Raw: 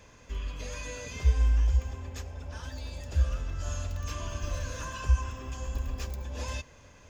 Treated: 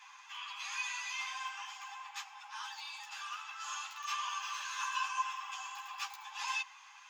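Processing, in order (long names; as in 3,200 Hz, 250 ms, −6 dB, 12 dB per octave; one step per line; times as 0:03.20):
Chebyshev high-pass with heavy ripple 780 Hz, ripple 6 dB
high-shelf EQ 3,700 Hz −6 dB
string-ensemble chorus
level +11.5 dB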